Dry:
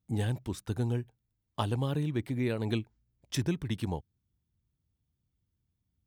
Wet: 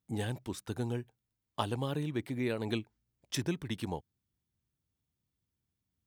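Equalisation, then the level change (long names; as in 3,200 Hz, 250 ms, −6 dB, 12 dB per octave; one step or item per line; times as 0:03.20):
low-shelf EQ 140 Hz −11 dB
0.0 dB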